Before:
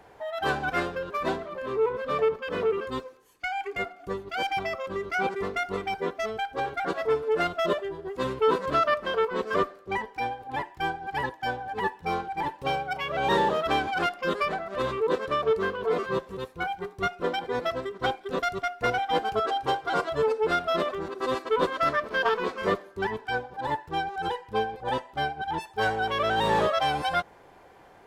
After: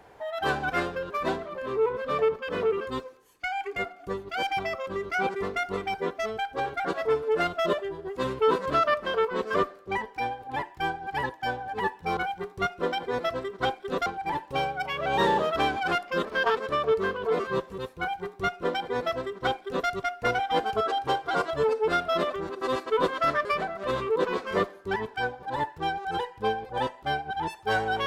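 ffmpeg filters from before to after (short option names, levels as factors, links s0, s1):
-filter_complex "[0:a]asplit=7[s0][s1][s2][s3][s4][s5][s6];[s0]atrim=end=12.172[s7];[s1]atrim=start=16.578:end=18.472[s8];[s2]atrim=start=12.168:end=14.362[s9];[s3]atrim=start=22.038:end=22.362[s10];[s4]atrim=start=15.158:end=22.042[s11];[s5]atrim=start=14.358:end=15.162[s12];[s6]atrim=start=22.358[s13];[s7][s8]acrossfade=d=0.004:c1=hsin:c2=hsin[s14];[s14][s9]acrossfade=d=0.004:c1=hsin:c2=hsin[s15];[s15][s10]acrossfade=d=0.004:c1=hsin:c2=hsin[s16];[s16][s11]acrossfade=d=0.004:c1=hsin:c2=hsin[s17];[s17][s12]acrossfade=d=0.004:c1=hsin:c2=hsin[s18];[s18][s13]acrossfade=d=0.004:c1=hsin:c2=hsin"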